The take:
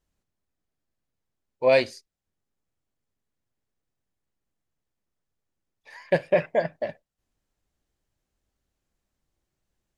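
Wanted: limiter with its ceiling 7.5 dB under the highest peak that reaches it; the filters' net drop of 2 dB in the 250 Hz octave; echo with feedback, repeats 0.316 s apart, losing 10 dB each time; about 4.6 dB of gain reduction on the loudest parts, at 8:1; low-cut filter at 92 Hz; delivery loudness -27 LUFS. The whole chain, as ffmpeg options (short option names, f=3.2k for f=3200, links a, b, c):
-af "highpass=92,equalizer=f=250:t=o:g=-3,acompressor=threshold=-19dB:ratio=8,alimiter=limit=-19dB:level=0:latency=1,aecho=1:1:316|632|948|1264:0.316|0.101|0.0324|0.0104,volume=6dB"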